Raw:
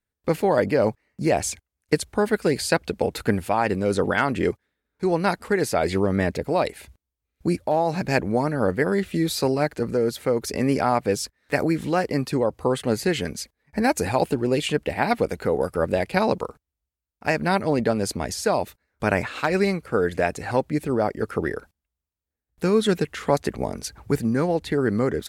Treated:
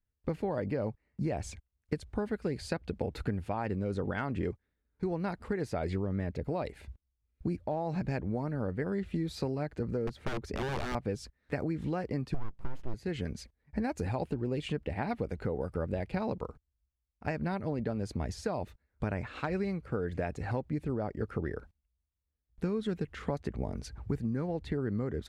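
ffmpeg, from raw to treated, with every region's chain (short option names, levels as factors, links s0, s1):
-filter_complex "[0:a]asettb=1/sr,asplit=3[s0][s1][s2];[s0]atrim=end=10.074[s3];[s1]atrim=start=10.07:end=10.95,asetpts=PTS-STARTPTS,afade=t=in:d=0.004:c=qsin,afade=t=out:st=0.876:d=0.004:c=qsin,aeval=exprs='(mod(7.94*val(0)+1,2)-1)/7.94':c=same,highshelf=f=4500:g=-7[s4];[s2]atrim=start=10.946[s5];[s3][s4]acrossfade=d=0.004:c1=hsin:c2=qsin[s6];[s6][s5]acrossfade=d=0.004:c1=qsin:c2=hsin,asettb=1/sr,asplit=3[s7][s8][s9];[s7]atrim=end=12.344[s10];[s8]atrim=start=12.34:end=12.94,asetpts=PTS-STARTPTS,afade=t=in:d=0.004:c=qsin,afade=t=out:st=0.596:d=0.004:c=qsin,asubboost=boost=10.5:cutoff=160,aeval=exprs='abs(val(0))':c=same[s11];[s9]atrim=start=12.936[s12];[s10][s11]acrossfade=d=0.004:c1=hsin:c2=qsin[s13];[s13][s12]acrossfade=d=0.004:c1=qsin:c2=hsin,aemphasis=mode=reproduction:type=bsi,acompressor=threshold=0.0891:ratio=5,volume=0.376"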